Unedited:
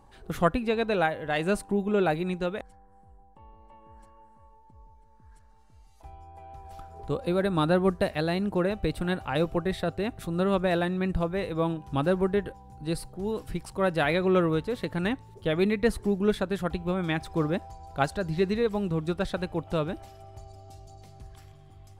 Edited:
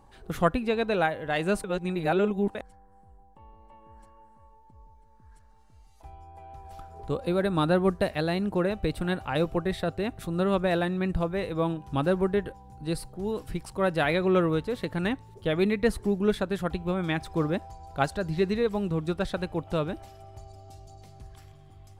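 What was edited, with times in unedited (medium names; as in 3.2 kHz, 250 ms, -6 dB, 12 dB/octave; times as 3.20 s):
1.64–2.55 s: reverse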